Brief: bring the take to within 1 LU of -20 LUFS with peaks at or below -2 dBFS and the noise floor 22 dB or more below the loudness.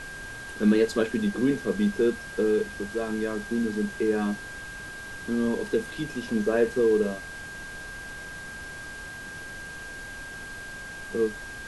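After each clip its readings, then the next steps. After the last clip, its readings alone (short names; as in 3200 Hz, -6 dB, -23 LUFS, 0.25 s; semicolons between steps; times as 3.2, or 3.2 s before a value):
steady tone 1600 Hz; tone level -38 dBFS; noise floor -40 dBFS; noise floor target -51 dBFS; loudness -28.5 LUFS; peak -11.0 dBFS; loudness target -20.0 LUFS
-> notch 1600 Hz, Q 30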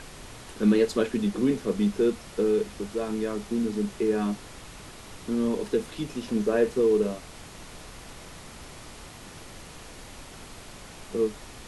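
steady tone none; noise floor -45 dBFS; noise floor target -49 dBFS
-> noise print and reduce 6 dB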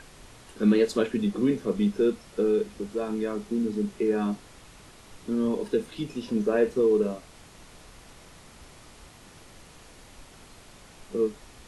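noise floor -51 dBFS; loudness -27.0 LUFS; peak -11.0 dBFS; loudness target -20.0 LUFS
-> gain +7 dB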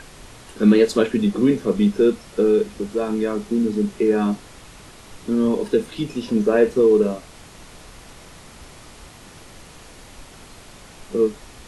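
loudness -20.0 LUFS; peak -4.0 dBFS; noise floor -44 dBFS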